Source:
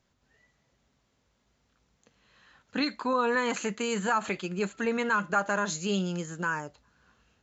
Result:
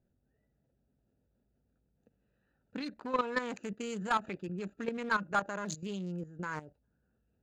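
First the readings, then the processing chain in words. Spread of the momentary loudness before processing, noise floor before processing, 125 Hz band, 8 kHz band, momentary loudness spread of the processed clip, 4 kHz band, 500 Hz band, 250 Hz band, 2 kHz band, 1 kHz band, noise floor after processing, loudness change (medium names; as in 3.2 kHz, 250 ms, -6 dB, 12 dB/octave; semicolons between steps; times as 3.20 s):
7 LU, -73 dBFS, -5.5 dB, no reading, 8 LU, -9.5 dB, -8.0 dB, -7.0 dB, -7.0 dB, -5.0 dB, -78 dBFS, -6.5 dB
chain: local Wiener filter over 41 samples; level held to a coarse grid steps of 13 dB; sine folder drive 4 dB, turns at -15 dBFS; trim -6.5 dB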